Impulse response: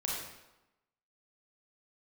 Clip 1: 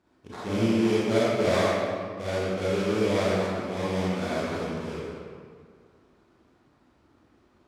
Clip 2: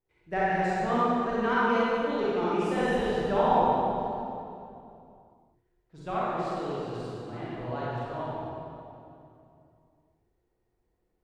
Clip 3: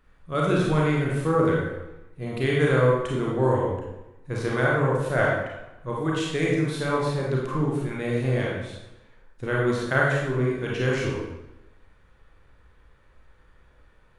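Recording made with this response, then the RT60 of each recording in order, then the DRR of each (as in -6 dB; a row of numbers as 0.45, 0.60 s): 3; 2.0, 2.7, 1.0 s; -9.0, -9.5, -4.0 dB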